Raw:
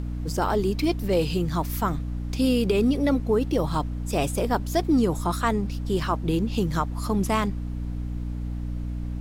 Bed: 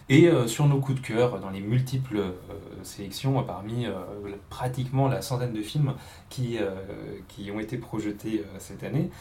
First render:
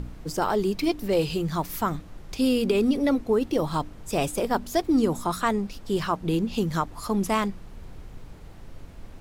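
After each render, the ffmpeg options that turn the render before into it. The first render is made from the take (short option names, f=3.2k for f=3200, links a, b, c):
-af "bandreject=f=60:t=h:w=4,bandreject=f=120:t=h:w=4,bandreject=f=180:t=h:w=4,bandreject=f=240:t=h:w=4,bandreject=f=300:t=h:w=4"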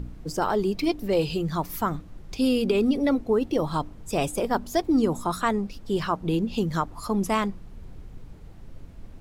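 -af "afftdn=nr=6:nf=-45"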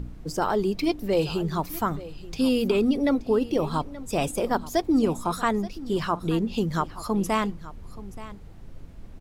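-af "aecho=1:1:877:0.141"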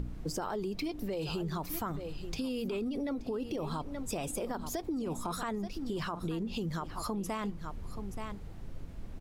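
-af "alimiter=limit=-22dB:level=0:latency=1:release=39,acompressor=threshold=-33dB:ratio=4"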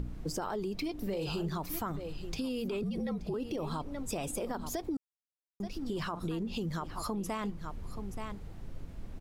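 -filter_complex "[0:a]asettb=1/sr,asplit=3[a][b][c];[a]atrim=end=0.974[d];[b]atrim=start=0.97:end=1.49,asetpts=PTS-STARTPTS,afade=t=in:d=0.004:c=qsin,afade=t=out:st=0.516:d=0.004:c=qsin,asplit=2[e][f];[f]adelay=41,volume=-9dB[g];[e][g]amix=inputs=2:normalize=0,atrim=end_sample=22932[h];[c]atrim=start=1.486[i];[d][h]acrossfade=d=0.004:c1=hsin:c2=qsin[j];[j][i]acrossfade=d=0.004:c1=qsin:c2=hsin,asettb=1/sr,asplit=3[k][l][m];[k]atrim=end=2.834[n];[l]atrim=start=2.83:end=3.34,asetpts=PTS-STARTPTS,afade=t=in:d=0.004:c=qsin,afade=t=out:st=0.506:d=0.004:c=qsin,afreqshift=-61[o];[m]atrim=start=3.336[p];[n][o]acrossfade=d=0.004:c1=hsin:c2=qsin[q];[q][p]acrossfade=d=0.004:c1=qsin:c2=hsin,asplit=3[r][s][t];[r]atrim=end=4.97,asetpts=PTS-STARTPTS,afade=t=out:st=4.966:d=0.004:c=hsin[u];[s]atrim=start=4.97:end=5.6,asetpts=PTS-STARTPTS,volume=0[v];[t]atrim=start=5.6,asetpts=PTS-STARTPTS,afade=t=in:d=0.004:c=hsin[w];[u][v][w]concat=n=3:v=0:a=1"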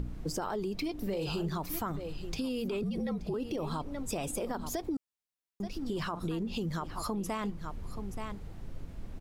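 -af "volume=1dB"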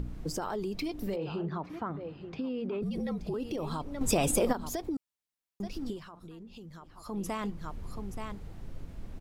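-filter_complex "[0:a]asplit=3[a][b][c];[a]afade=t=out:st=1.15:d=0.02[d];[b]highpass=130,lowpass=2k,afade=t=in:st=1.15:d=0.02,afade=t=out:st=2.81:d=0.02[e];[c]afade=t=in:st=2.81:d=0.02[f];[d][e][f]amix=inputs=3:normalize=0,asplit=5[g][h][i][j][k];[g]atrim=end=4.012[l];[h]atrim=start=4.008:end=4.532,asetpts=PTS-STARTPTS,volume=8.5dB[m];[i]atrim=start=4.528:end=6,asetpts=PTS-STARTPTS,afade=t=out:st=1.352:d=0.12:silence=0.211349[n];[j]atrim=start=6:end=7.05,asetpts=PTS-STARTPTS,volume=-13.5dB[o];[k]atrim=start=7.05,asetpts=PTS-STARTPTS,afade=t=in:d=0.12:silence=0.211349[p];[l][m]acrossfade=d=0.004:c1=hsin:c2=hsin[q];[n][o][p]concat=n=3:v=0:a=1[r];[q][r]acrossfade=d=0.004:c1=hsin:c2=hsin"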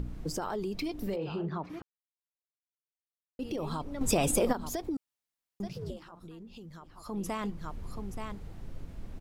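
-filter_complex "[0:a]asettb=1/sr,asplit=3[a][b][c];[a]atrim=end=5.694[d];[b]atrim=start=5.69:end=6.12,asetpts=PTS-STARTPTS,afade=t=in:d=0.004:c=qsin,afade=t=out:st=0.426:d=0.004:c=qsin,aeval=exprs='val(0)*sin(2*PI*160*n/s)':c=same[e];[c]atrim=start=6.116[f];[d][e]acrossfade=d=0.004:c1=hsin:c2=qsin[g];[g][f]acrossfade=d=0.004:c1=qsin:c2=hsin,asplit=3[h][i][j];[h]atrim=end=1.82,asetpts=PTS-STARTPTS,afade=t=out:st=1.816:d=0.004:c=hsin[k];[i]atrim=start=1.82:end=3.39,asetpts=PTS-STARTPTS,volume=0[l];[j]atrim=start=3.39,asetpts=PTS-STARTPTS,afade=t=in:d=0.004:c=hsin[m];[k][l][m]concat=n=3:v=0:a=1"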